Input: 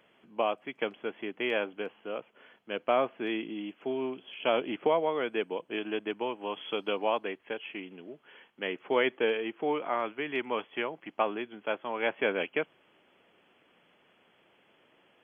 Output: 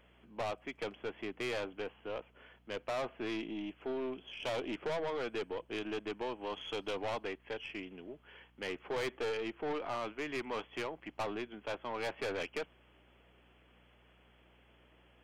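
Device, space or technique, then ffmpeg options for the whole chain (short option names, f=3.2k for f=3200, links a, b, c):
valve amplifier with mains hum: -af "aeval=exprs='(tanh(35.5*val(0)+0.25)-tanh(0.25))/35.5':c=same,aeval=exprs='val(0)+0.000562*(sin(2*PI*60*n/s)+sin(2*PI*2*60*n/s)/2+sin(2*PI*3*60*n/s)/3+sin(2*PI*4*60*n/s)/4+sin(2*PI*5*60*n/s)/5)':c=same,volume=-1.5dB"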